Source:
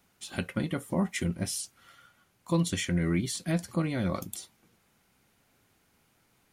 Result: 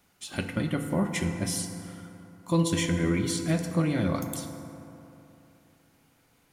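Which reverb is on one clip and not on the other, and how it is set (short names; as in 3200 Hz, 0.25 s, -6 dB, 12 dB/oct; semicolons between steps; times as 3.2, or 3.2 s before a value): FDN reverb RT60 3.1 s, high-frequency decay 0.4×, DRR 5 dB; gain +1.5 dB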